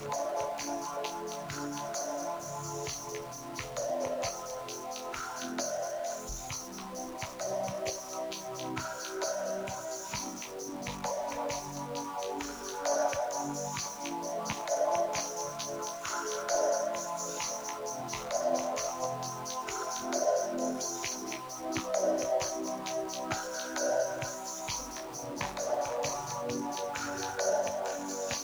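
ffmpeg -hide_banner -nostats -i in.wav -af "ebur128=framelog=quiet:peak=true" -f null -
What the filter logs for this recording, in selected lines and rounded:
Integrated loudness:
  I:         -34.6 LUFS
  Threshold: -44.6 LUFS
Loudness range:
  LRA:         4.2 LU
  Threshold: -54.6 LUFS
  LRA low:   -37.0 LUFS
  LRA high:  -32.8 LUFS
True peak:
  Peak:      -15.8 dBFS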